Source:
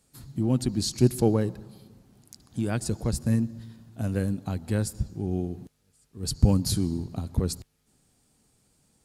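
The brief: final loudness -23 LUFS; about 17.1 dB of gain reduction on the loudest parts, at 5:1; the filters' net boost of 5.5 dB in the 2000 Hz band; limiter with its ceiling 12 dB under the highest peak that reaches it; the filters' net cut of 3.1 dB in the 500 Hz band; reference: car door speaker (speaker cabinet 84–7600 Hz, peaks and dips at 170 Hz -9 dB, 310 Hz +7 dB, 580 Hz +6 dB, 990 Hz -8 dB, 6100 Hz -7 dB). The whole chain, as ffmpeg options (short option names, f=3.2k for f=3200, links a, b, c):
-af "equalizer=f=500:t=o:g=-8.5,equalizer=f=2k:t=o:g=9,acompressor=threshold=-33dB:ratio=5,alimiter=level_in=9.5dB:limit=-24dB:level=0:latency=1,volume=-9.5dB,highpass=84,equalizer=f=170:t=q:w=4:g=-9,equalizer=f=310:t=q:w=4:g=7,equalizer=f=580:t=q:w=4:g=6,equalizer=f=990:t=q:w=4:g=-8,equalizer=f=6.1k:t=q:w=4:g=-7,lowpass=f=7.6k:w=0.5412,lowpass=f=7.6k:w=1.3066,volume=22dB"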